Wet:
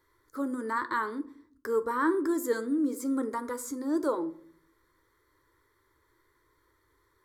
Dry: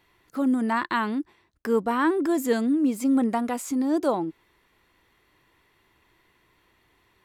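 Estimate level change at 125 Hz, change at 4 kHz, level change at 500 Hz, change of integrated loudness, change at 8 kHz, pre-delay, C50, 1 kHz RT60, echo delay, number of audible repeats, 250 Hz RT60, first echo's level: below −15 dB, −10.5 dB, −4.0 dB, −6.0 dB, −3.5 dB, 10 ms, 17.0 dB, 0.50 s, no echo audible, no echo audible, 1.0 s, no echo audible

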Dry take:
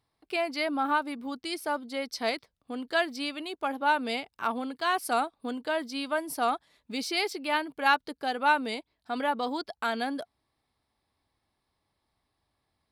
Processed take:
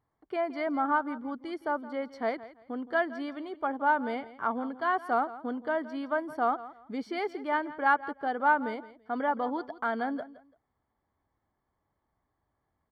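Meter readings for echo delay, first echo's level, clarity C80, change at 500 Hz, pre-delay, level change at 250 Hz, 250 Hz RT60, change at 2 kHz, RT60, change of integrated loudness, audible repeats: 168 ms, −16.5 dB, no reverb audible, 0.0 dB, no reverb audible, 0.0 dB, no reverb audible, −2.0 dB, no reverb audible, −1.0 dB, 2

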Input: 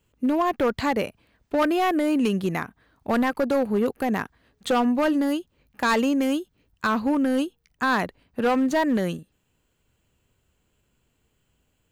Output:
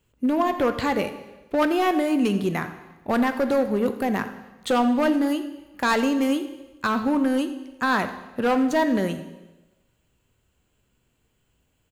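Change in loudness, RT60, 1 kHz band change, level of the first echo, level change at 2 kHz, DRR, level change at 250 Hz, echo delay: +0.5 dB, 1.1 s, +0.5 dB, −17.0 dB, +0.5 dB, 8.0 dB, +0.5 dB, 85 ms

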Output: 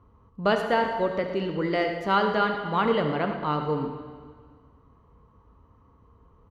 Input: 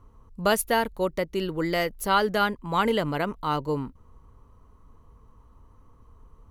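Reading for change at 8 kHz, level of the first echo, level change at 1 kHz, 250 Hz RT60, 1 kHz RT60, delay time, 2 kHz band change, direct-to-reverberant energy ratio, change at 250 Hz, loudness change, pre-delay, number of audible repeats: below −20 dB, −12.0 dB, +0.5 dB, 1.9 s, 1.8 s, 73 ms, −0.5 dB, 4.0 dB, +0.5 dB, 0.0 dB, 5 ms, 2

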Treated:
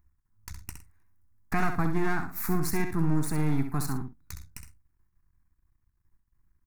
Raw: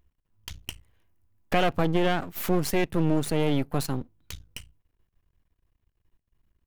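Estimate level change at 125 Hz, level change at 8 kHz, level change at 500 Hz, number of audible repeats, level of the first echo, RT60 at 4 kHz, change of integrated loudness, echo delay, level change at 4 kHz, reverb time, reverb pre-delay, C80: −0.5 dB, −1.0 dB, −9.0 dB, 2, −7.5 dB, no reverb audible, −3.0 dB, 65 ms, −12.0 dB, no reverb audible, no reverb audible, no reverb audible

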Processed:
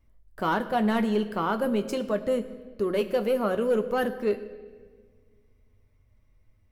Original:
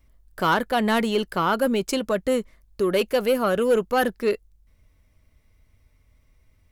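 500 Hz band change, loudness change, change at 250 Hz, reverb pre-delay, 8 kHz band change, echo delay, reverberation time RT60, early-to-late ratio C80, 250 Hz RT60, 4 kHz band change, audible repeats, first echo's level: −3.5 dB, −4.0 dB, −2.0 dB, 8 ms, below −10 dB, no echo audible, 1.6 s, 14.5 dB, 2.2 s, −9.5 dB, no echo audible, no echo audible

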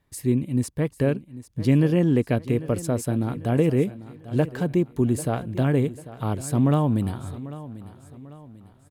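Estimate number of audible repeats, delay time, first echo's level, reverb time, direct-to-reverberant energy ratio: 3, 794 ms, −16.0 dB, no reverb audible, no reverb audible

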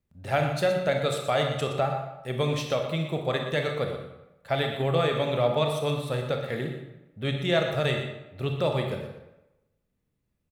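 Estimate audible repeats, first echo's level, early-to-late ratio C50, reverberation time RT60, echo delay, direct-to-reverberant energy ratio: 1, −10.5 dB, 4.5 dB, 0.95 s, 120 ms, 2.5 dB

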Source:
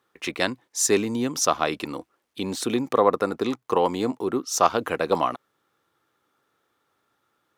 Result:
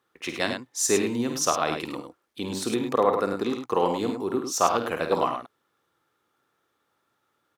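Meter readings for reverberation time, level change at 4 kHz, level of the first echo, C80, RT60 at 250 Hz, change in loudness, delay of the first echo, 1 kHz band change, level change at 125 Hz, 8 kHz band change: no reverb audible, −1.5 dB, −8.5 dB, no reverb audible, no reverb audible, −1.5 dB, 51 ms, −1.5 dB, −1.5 dB, −1.5 dB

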